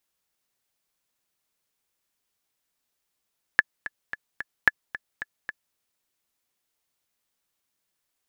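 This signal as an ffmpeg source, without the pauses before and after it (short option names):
-f lavfi -i "aevalsrc='pow(10,(-2.5-16*gte(mod(t,4*60/221),60/221))/20)*sin(2*PI*1720*mod(t,60/221))*exp(-6.91*mod(t,60/221)/0.03)':d=2.17:s=44100"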